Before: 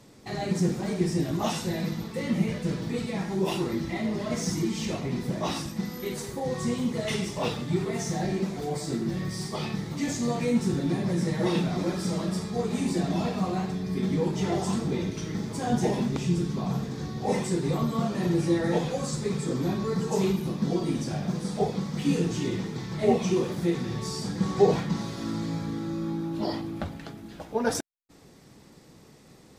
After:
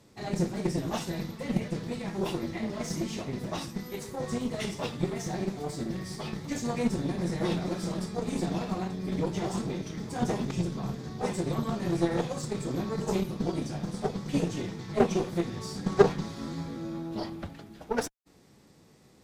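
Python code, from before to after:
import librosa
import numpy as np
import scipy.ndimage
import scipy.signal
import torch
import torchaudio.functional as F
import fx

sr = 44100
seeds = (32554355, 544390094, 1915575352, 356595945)

y = fx.cheby_harmonics(x, sr, harmonics=(3, 4, 8), levels_db=(-13, -30, -32), full_scale_db=-8.0)
y = fx.stretch_vocoder(y, sr, factor=0.65)
y = F.gain(torch.from_numpy(y), 5.5).numpy()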